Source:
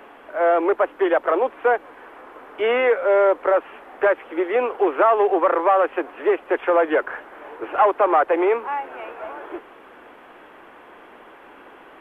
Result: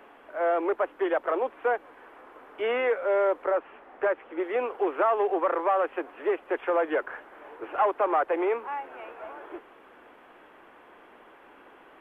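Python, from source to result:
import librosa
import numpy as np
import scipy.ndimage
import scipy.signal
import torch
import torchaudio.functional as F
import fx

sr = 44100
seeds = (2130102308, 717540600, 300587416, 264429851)

y = fx.lowpass(x, sr, hz=2700.0, slope=6, at=(3.45, 4.4))
y = y * librosa.db_to_amplitude(-7.5)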